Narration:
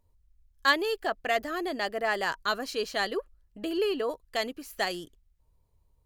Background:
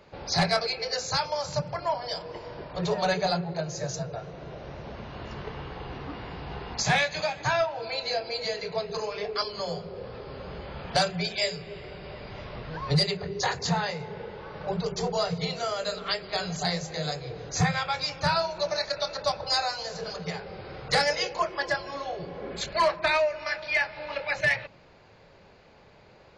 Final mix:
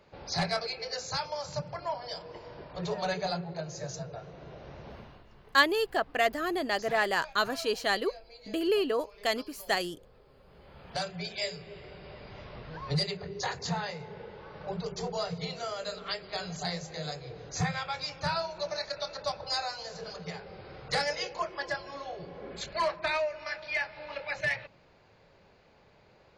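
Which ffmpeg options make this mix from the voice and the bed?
-filter_complex "[0:a]adelay=4900,volume=1dB[a];[1:a]volume=8dB,afade=t=out:st=4.94:d=0.3:silence=0.199526,afade=t=in:st=10.46:d=0.99:silence=0.199526[b];[a][b]amix=inputs=2:normalize=0"

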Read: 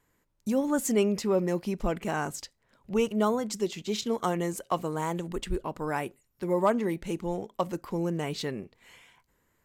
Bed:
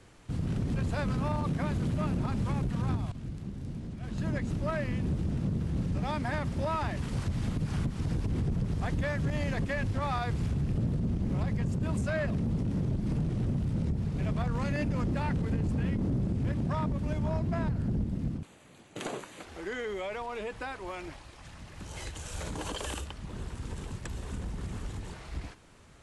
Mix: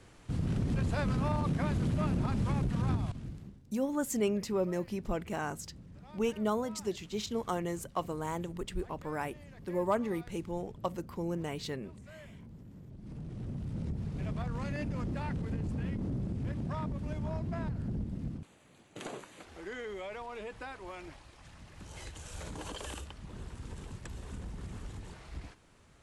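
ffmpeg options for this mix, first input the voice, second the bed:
-filter_complex "[0:a]adelay=3250,volume=-5.5dB[a];[1:a]volume=14.5dB,afade=t=out:st=3.1:d=0.52:silence=0.1,afade=t=in:st=12.89:d=1.07:silence=0.177828[b];[a][b]amix=inputs=2:normalize=0"

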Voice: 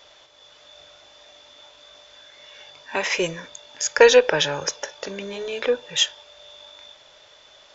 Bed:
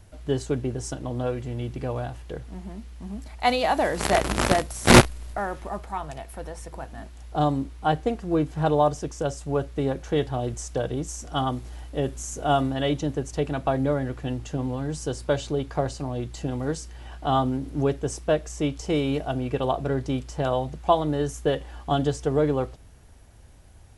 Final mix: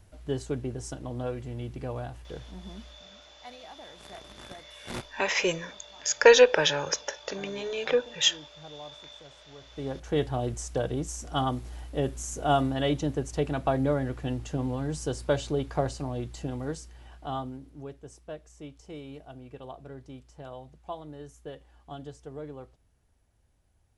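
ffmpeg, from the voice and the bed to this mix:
-filter_complex "[0:a]adelay=2250,volume=-3dB[a];[1:a]volume=17.5dB,afade=t=out:st=2.81:d=0.23:silence=0.105925,afade=t=in:st=9.61:d=0.62:silence=0.0707946,afade=t=out:st=15.83:d=1.95:silence=0.158489[b];[a][b]amix=inputs=2:normalize=0"

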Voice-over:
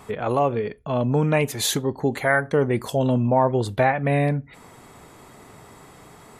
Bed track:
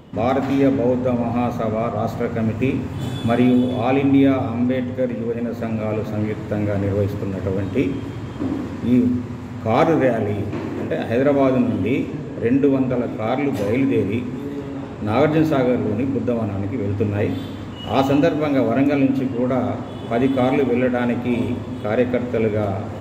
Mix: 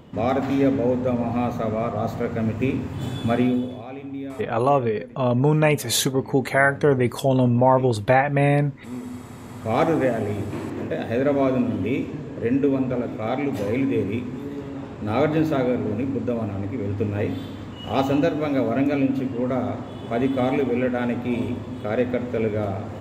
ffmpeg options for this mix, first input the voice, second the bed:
-filter_complex "[0:a]adelay=4300,volume=2dB[a];[1:a]volume=11dB,afade=t=out:st=3.33:d=0.53:silence=0.177828,afade=t=in:st=9.04:d=0.77:silence=0.199526[b];[a][b]amix=inputs=2:normalize=0"

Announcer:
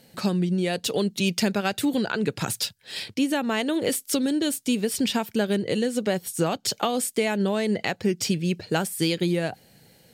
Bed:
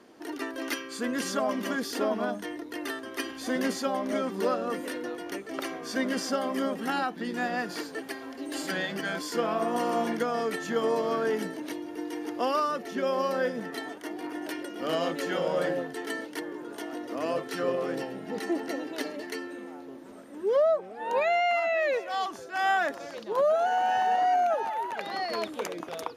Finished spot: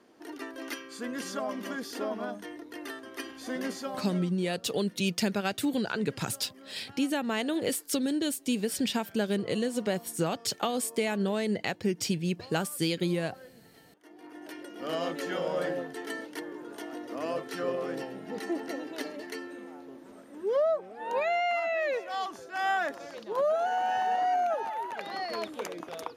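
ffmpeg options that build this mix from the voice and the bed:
-filter_complex "[0:a]adelay=3800,volume=-5dB[a];[1:a]volume=14.5dB,afade=t=out:st=3.75:d=0.66:silence=0.133352,afade=t=in:st=13.97:d=1.08:silence=0.1[b];[a][b]amix=inputs=2:normalize=0"

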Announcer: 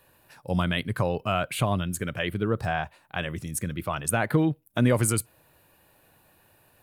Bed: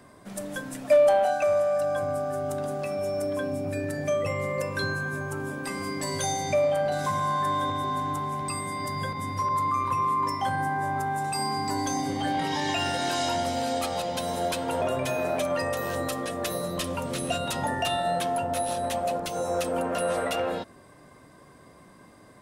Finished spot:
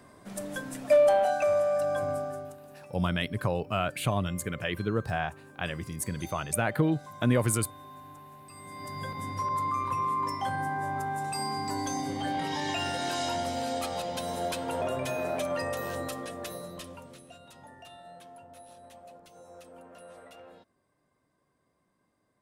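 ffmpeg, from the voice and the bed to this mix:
-filter_complex "[0:a]adelay=2450,volume=-3dB[a];[1:a]volume=13dB,afade=t=out:st=2.11:d=0.46:silence=0.141254,afade=t=in:st=8.51:d=0.7:silence=0.177828,afade=t=out:st=15.8:d=1.45:silence=0.11885[b];[a][b]amix=inputs=2:normalize=0"

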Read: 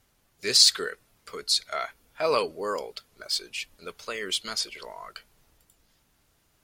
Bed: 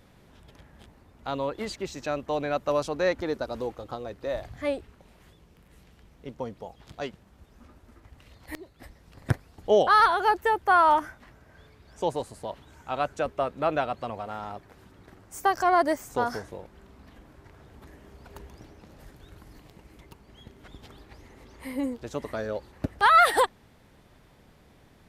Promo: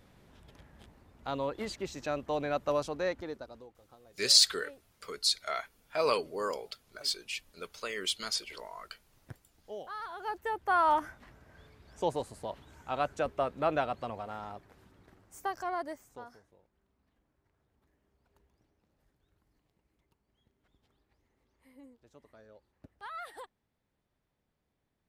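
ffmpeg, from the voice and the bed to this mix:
-filter_complex "[0:a]adelay=3750,volume=-4dB[a];[1:a]volume=15dB,afade=t=out:st=2.69:d=1:silence=0.11885,afade=t=in:st=10.05:d=1.15:silence=0.112202,afade=t=out:st=13.82:d=2.55:silence=0.0841395[b];[a][b]amix=inputs=2:normalize=0"

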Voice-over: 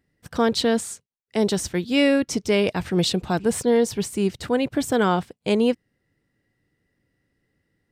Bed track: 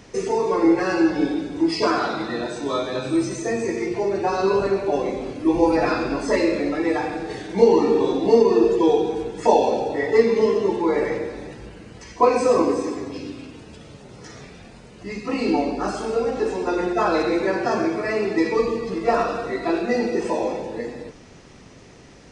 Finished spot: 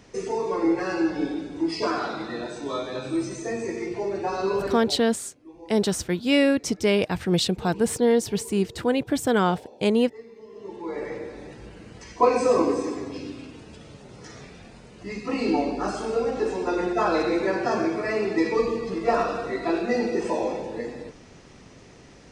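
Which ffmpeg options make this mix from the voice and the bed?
-filter_complex "[0:a]adelay=4350,volume=-1dB[a];[1:a]volume=19.5dB,afade=t=out:st=4.63:d=0.41:silence=0.0794328,afade=t=in:st=10.49:d=1.37:silence=0.0562341[b];[a][b]amix=inputs=2:normalize=0"

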